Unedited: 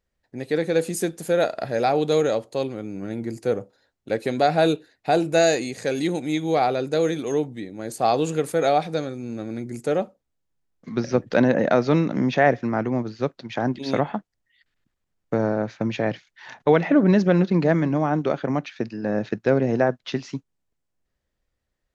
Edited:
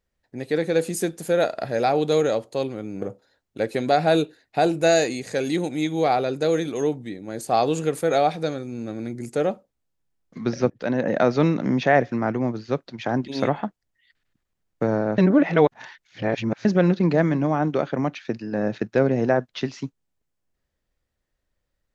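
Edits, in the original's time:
3.02–3.53 cut
11.21–11.77 fade in, from -15 dB
15.69–17.16 reverse

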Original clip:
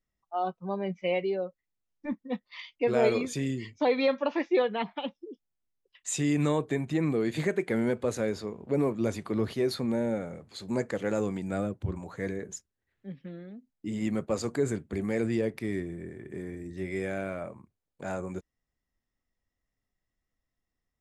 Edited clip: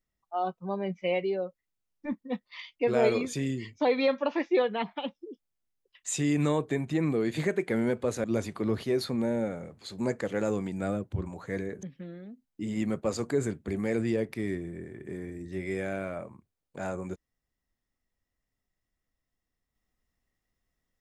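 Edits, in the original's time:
8.24–8.94 cut
12.53–13.08 cut

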